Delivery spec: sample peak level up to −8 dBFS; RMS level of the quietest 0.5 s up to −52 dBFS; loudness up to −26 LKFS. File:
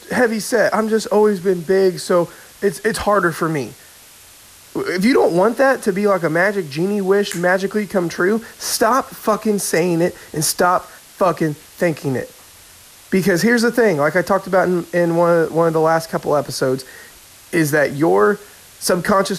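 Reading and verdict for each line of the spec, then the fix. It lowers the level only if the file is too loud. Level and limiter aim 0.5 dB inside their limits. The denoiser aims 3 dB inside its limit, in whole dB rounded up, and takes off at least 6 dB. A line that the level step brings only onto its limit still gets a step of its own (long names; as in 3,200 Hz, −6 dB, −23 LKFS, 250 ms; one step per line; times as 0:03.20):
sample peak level −5.5 dBFS: out of spec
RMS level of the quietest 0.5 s −44 dBFS: out of spec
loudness −17.5 LKFS: out of spec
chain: level −9 dB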